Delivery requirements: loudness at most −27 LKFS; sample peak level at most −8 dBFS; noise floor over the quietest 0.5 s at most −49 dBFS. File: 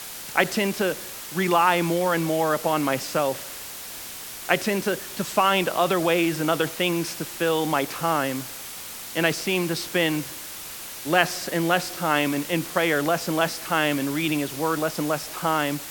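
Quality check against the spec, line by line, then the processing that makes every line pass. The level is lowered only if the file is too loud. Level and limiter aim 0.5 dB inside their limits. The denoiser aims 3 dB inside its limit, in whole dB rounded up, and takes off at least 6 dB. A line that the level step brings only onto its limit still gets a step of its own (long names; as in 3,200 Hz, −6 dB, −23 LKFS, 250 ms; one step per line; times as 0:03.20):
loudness −24.0 LKFS: out of spec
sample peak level −2.5 dBFS: out of spec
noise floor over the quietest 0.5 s −37 dBFS: out of spec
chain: broadband denoise 12 dB, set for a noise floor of −37 dBFS
level −3.5 dB
brickwall limiter −8.5 dBFS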